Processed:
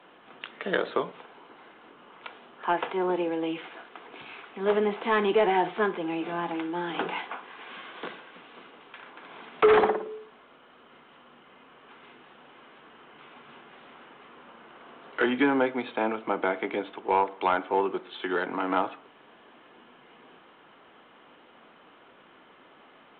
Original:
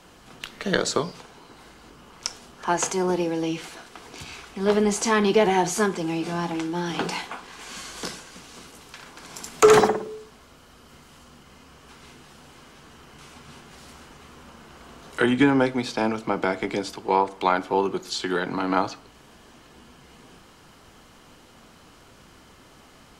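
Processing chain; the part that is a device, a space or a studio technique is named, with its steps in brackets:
telephone (band-pass filter 310–3,100 Hz; soft clipping −11.5 dBFS, distortion −16 dB; level −1 dB; A-law companding 64 kbit/s 8,000 Hz)

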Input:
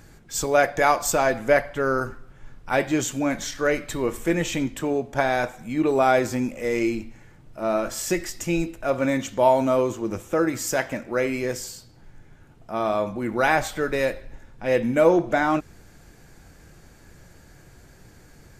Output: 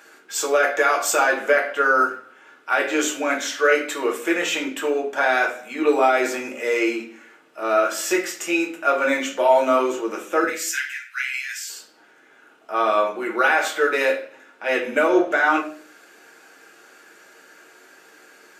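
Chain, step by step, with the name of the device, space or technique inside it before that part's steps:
laptop speaker (high-pass filter 350 Hz 24 dB per octave; parametric band 1,400 Hz +7 dB 0.56 octaves; parametric band 2,800 Hz +7 dB 0.59 octaves; brickwall limiter −11 dBFS, peak gain reduction 8.5 dB)
0:10.44–0:11.70: Butterworth high-pass 1,600 Hz 48 dB per octave
rectangular room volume 31 cubic metres, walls mixed, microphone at 0.55 metres

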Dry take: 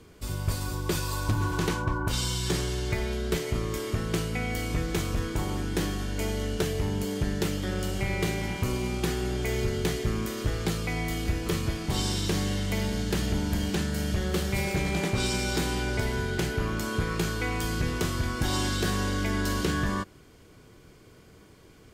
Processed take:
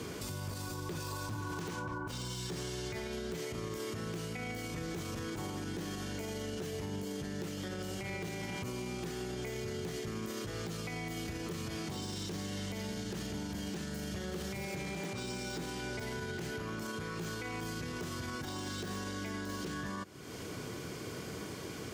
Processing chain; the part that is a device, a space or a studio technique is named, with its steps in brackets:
broadcast voice chain (high-pass filter 110 Hz 12 dB per octave; de-essing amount 80%; downward compressor 4 to 1, threshold −47 dBFS, peak gain reduction 18.5 dB; parametric band 5,900 Hz +3.5 dB 0.61 octaves; brickwall limiter −43 dBFS, peak gain reduction 10.5 dB)
level +12 dB

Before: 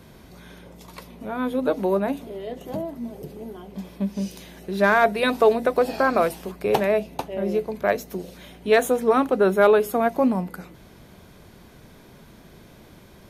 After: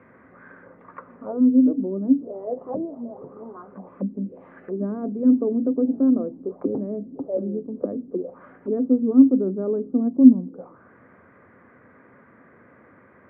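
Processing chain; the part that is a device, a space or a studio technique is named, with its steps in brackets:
envelope filter bass rig (envelope-controlled low-pass 270–2,300 Hz down, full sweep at −23.5 dBFS; loudspeaker in its box 89–2,100 Hz, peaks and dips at 160 Hz −5 dB, 260 Hz +8 dB, 510 Hz +9 dB, 1,200 Hz +10 dB)
0:03.87–0:04.71: high shelf with overshoot 1,700 Hz +7 dB, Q 1.5
level −7.5 dB

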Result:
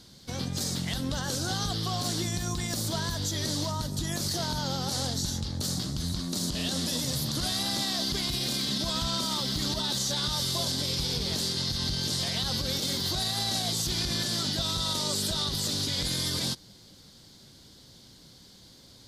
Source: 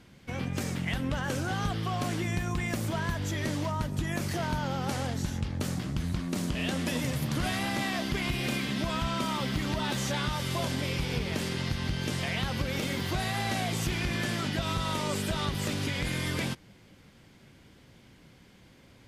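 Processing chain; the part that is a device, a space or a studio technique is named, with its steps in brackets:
over-bright horn tweeter (high shelf with overshoot 3,200 Hz +9 dB, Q 3; brickwall limiter −20 dBFS, peak gain reduction 7.5 dB)

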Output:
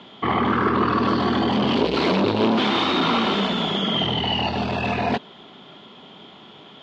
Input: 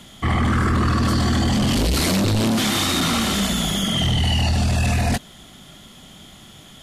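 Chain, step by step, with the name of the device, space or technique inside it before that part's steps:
kitchen radio (loudspeaker in its box 220–3,600 Hz, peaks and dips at 420 Hz +8 dB, 950 Hz +7 dB, 1,900 Hz −5 dB)
level +1.5 dB

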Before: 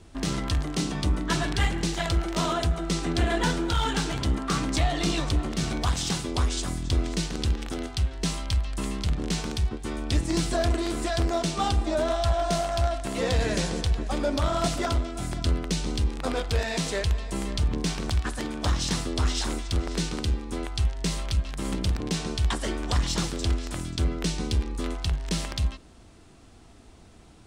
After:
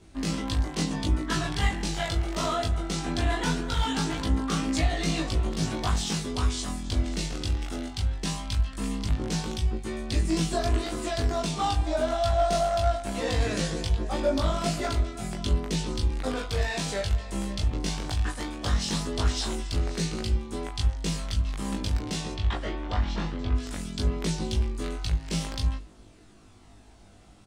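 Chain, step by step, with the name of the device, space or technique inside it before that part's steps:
0:22.32–0:23.54: low-pass filter 3,500 Hz → 2,200 Hz 12 dB per octave
mains-hum notches 50/100/150 Hz
double-tracked vocal (double-tracking delay 19 ms −4 dB; chorus effect 0.2 Hz, delay 18.5 ms, depth 2 ms)

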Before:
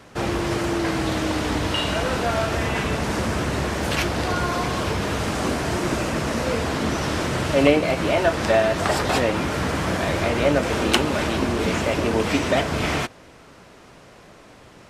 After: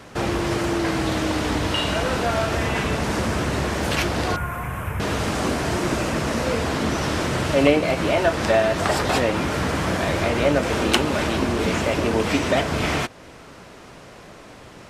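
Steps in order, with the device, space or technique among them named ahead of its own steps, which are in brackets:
parallel compression (in parallel at −2 dB: downward compressor, threshold −33 dBFS, peak gain reduction 20 dB)
0:04.36–0:05.00: on the sum: drawn EQ curve 120 Hz 0 dB, 320 Hz −14 dB, 1,400 Hz −3 dB, 2,500 Hz −6 dB, 4,400 Hz −29 dB, 13,000 Hz +5 dB
level −1 dB

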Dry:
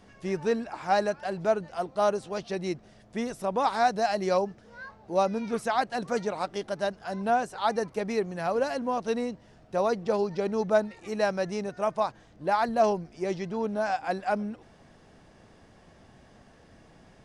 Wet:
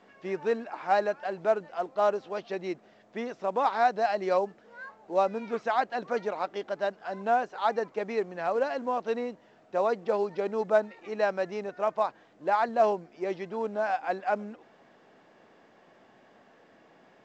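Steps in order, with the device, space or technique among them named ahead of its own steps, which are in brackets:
telephone (band-pass filter 300–3,100 Hz; mu-law 128 kbit/s 16,000 Hz)

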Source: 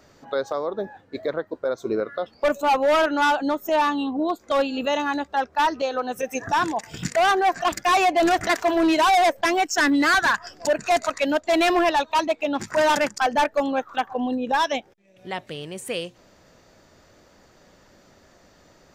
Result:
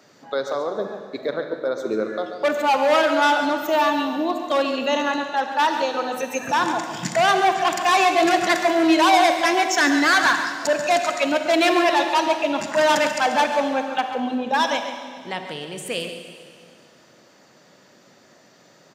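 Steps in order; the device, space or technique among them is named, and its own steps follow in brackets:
PA in a hall (high-pass filter 130 Hz 24 dB per octave; parametric band 3,900 Hz +3 dB 2.4 octaves; single-tap delay 138 ms −11 dB; convolution reverb RT60 2.1 s, pre-delay 36 ms, DRR 7 dB)

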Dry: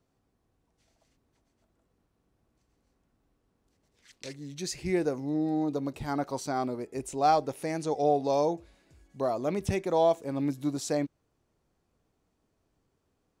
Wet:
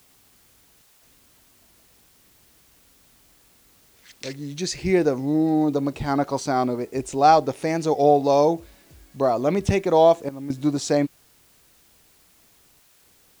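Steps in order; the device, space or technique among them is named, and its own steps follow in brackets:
worn cassette (low-pass filter 7,300 Hz; tape wow and flutter 28 cents; tape dropouts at 0:00.82/0:10.29/0:12.80, 208 ms −13 dB; white noise bed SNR 34 dB)
level +8.5 dB

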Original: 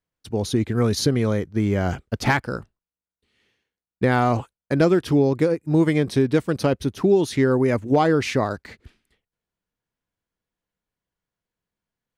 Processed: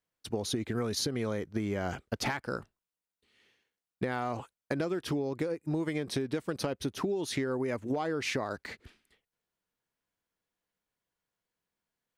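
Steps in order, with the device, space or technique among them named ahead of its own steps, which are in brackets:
low-shelf EQ 190 Hz −9.5 dB
serial compression, leveller first (downward compressor 2 to 1, threshold −23 dBFS, peak gain reduction 5 dB; downward compressor, threshold −29 dBFS, peak gain reduction 10 dB)

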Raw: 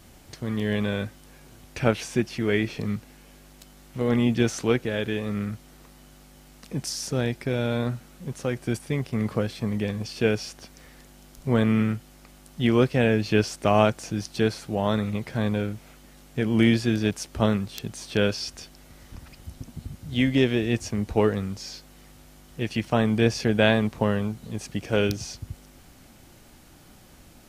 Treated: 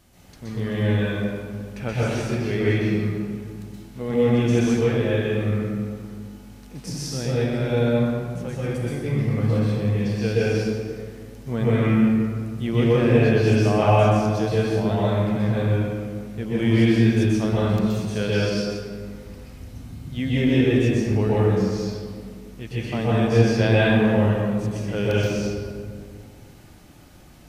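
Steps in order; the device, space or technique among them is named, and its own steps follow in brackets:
harmonic and percussive parts rebalanced percussive −5 dB
stairwell (convolution reverb RT60 2.0 s, pre-delay 118 ms, DRR −8 dB)
level −4.5 dB

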